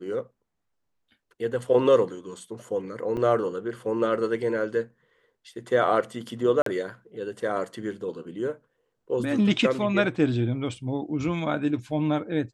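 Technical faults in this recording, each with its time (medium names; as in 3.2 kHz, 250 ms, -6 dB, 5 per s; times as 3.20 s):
3.17 s: dropout 2.8 ms
6.62–6.66 s: dropout 43 ms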